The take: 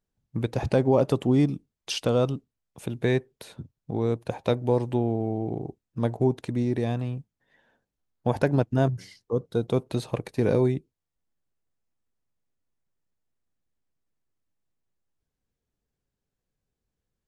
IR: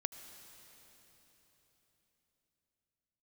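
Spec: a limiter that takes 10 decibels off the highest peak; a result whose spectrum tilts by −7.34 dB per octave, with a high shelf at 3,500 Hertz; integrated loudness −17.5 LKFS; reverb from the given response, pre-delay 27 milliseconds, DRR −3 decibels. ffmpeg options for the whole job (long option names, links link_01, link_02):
-filter_complex "[0:a]highshelf=frequency=3500:gain=-8,alimiter=limit=-19.5dB:level=0:latency=1,asplit=2[link_01][link_02];[1:a]atrim=start_sample=2205,adelay=27[link_03];[link_02][link_03]afir=irnorm=-1:irlink=0,volume=3.5dB[link_04];[link_01][link_04]amix=inputs=2:normalize=0,volume=10.5dB"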